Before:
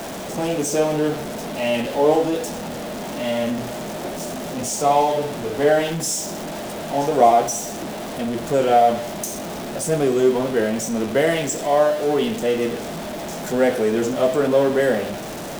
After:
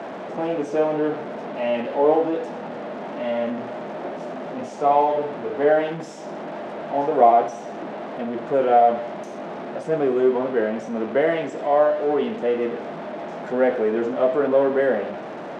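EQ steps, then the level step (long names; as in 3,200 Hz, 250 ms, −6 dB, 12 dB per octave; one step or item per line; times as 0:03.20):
Bessel high-pass filter 280 Hz, order 2
low-pass filter 1,800 Hz 12 dB per octave
0.0 dB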